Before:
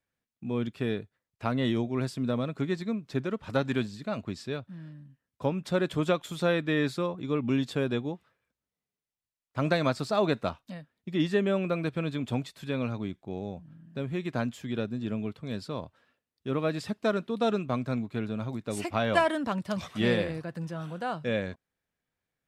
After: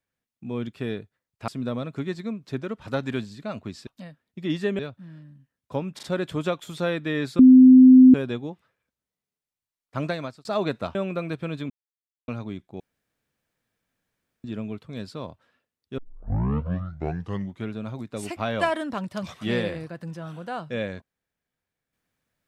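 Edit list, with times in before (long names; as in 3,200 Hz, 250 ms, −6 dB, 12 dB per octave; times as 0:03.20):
0:01.48–0:02.10: remove
0:05.65: stutter 0.04 s, 3 plays
0:07.01–0:07.76: beep over 257 Hz −7 dBFS
0:09.61–0:10.07: fade out
0:10.57–0:11.49: move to 0:04.49
0:12.24–0:12.82: silence
0:13.34–0:14.98: fill with room tone
0:16.52: tape start 1.73 s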